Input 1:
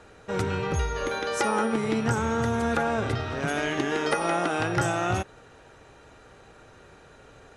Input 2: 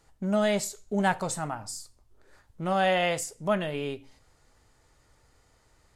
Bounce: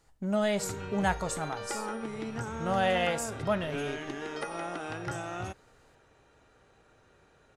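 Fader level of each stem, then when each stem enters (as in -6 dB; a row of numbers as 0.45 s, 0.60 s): -11.0 dB, -3.0 dB; 0.30 s, 0.00 s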